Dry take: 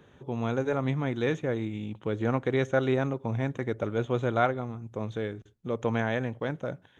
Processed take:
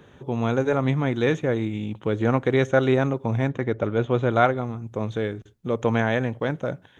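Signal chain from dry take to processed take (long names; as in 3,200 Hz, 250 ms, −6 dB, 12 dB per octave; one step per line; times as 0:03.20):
0:03.47–0:04.31: high-frequency loss of the air 100 metres
level +6 dB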